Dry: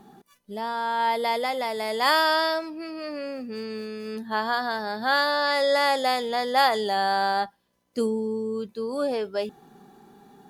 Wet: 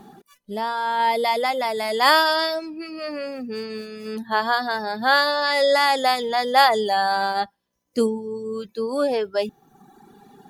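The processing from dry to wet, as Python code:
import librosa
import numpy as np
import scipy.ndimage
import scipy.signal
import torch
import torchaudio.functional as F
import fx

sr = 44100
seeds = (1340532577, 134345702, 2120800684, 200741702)

y = fx.dereverb_blind(x, sr, rt60_s=1.1)
y = y * librosa.db_to_amplitude(5.5)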